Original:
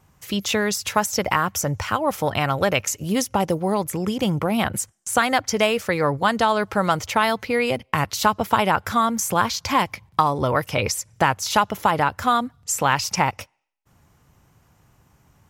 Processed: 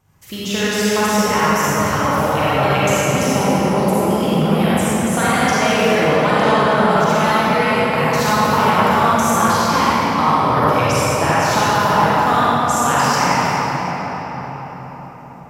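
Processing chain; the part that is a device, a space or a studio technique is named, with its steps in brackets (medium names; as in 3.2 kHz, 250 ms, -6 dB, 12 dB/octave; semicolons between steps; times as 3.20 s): cathedral (reverberation RT60 5.5 s, pre-delay 37 ms, DRR -11 dB); trim -5 dB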